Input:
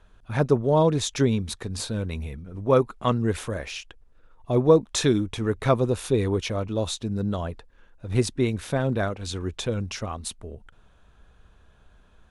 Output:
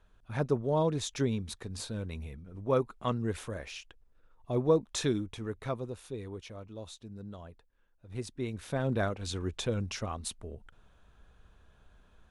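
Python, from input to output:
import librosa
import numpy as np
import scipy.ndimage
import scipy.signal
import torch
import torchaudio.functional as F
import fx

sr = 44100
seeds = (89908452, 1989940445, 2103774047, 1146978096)

y = fx.gain(x, sr, db=fx.line((5.09, -8.5), (6.08, -17.5), (8.07, -17.5), (8.97, -4.5)))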